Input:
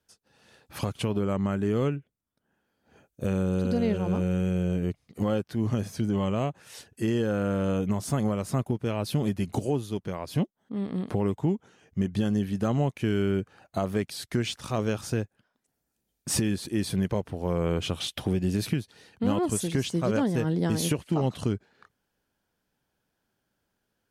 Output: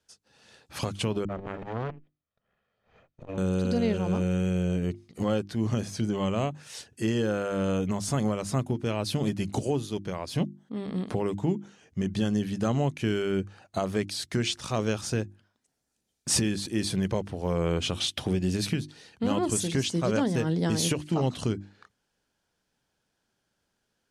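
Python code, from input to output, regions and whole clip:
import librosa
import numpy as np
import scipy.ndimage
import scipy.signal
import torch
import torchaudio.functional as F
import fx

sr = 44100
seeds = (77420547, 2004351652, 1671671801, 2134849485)

y = fx.chain(x, sr, fx.lower_of_two(delay_ms=1.6),
    fx.lowpass(hz=2700.0, slope=12),
    fx.transformer_sat(knee_hz=520.0), at=(1.25, 3.38))
y = scipy.signal.sosfilt(scipy.signal.butter(2, 7000.0, 'lowpass', fs=sr, output='sos'), y)
y = fx.high_shelf(y, sr, hz=4600.0, db=10.5)
y = fx.hum_notches(y, sr, base_hz=50, count=7)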